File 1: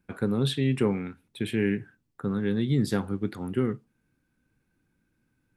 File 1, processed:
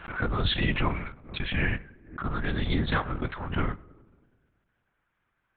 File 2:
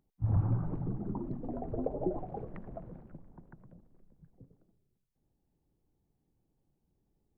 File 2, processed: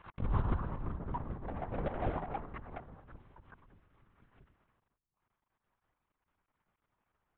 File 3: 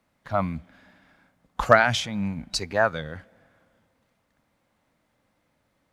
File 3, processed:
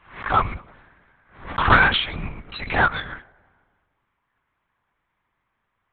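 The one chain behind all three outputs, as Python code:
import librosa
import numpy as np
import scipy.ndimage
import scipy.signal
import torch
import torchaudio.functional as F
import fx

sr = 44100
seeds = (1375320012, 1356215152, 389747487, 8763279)

p1 = fx.law_mismatch(x, sr, coded='A')
p2 = fx.low_shelf_res(p1, sr, hz=740.0, db=-9.5, q=1.5)
p3 = fx.env_lowpass(p2, sr, base_hz=2300.0, full_db=-27.5)
p4 = fx.rider(p3, sr, range_db=4, speed_s=2.0)
p5 = p3 + (p4 * 10.0 ** (-1.5 / 20.0))
p6 = 10.0 ** (-10.5 / 20.0) * np.tanh(p5 / 10.0 ** (-10.5 / 20.0))
p7 = p6 + fx.echo_filtered(p6, sr, ms=108, feedback_pct=67, hz=1500.0, wet_db=-21.5, dry=0)
p8 = fx.lpc_vocoder(p7, sr, seeds[0], excitation='whisper', order=8)
p9 = fx.pre_swell(p8, sr, db_per_s=120.0)
y = p9 * 10.0 ** (3.0 / 20.0)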